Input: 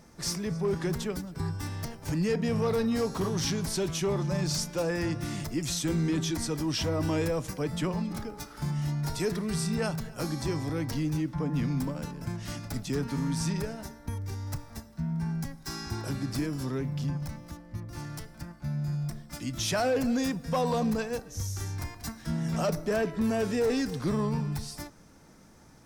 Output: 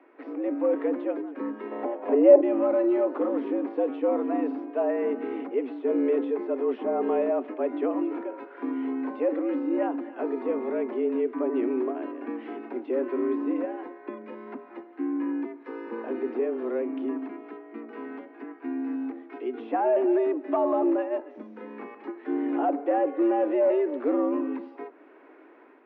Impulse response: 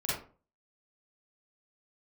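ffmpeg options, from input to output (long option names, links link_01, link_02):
-filter_complex "[0:a]asettb=1/sr,asplit=3[link_01][link_02][link_03];[link_01]atrim=end=1.714[link_04];[link_02]atrim=start=1.71:end=2.41,asetpts=PTS-STARTPTS,afade=type=in:duration=0.004:curve=qsin,afade=type=out:start_time=0.696:duration=0.004:curve=qsin,equalizer=frequency=490:width_type=o:width=1.7:gain=12[link_05];[link_03]atrim=start=2.406[link_06];[link_04][link_05]acrossfade=duration=0.004:curve1=hsin:curve2=qsin[link_07];[link_07][link_06]acrossfade=duration=0.004:curve1=qsin:curve2=hsin,acrossover=split=860[link_08][link_09];[link_09]acompressor=threshold=-51dB:ratio=4[link_10];[link_08][link_10]amix=inputs=2:normalize=0,highpass=frequency=160:width_type=q:width=0.5412,highpass=frequency=160:width_type=q:width=1.307,lowpass=frequency=2600:width_type=q:width=0.5176,lowpass=frequency=2600:width_type=q:width=0.7071,lowpass=frequency=2600:width_type=q:width=1.932,afreqshift=120,dynaudnorm=framelen=100:gausssize=5:maxgain=5dB"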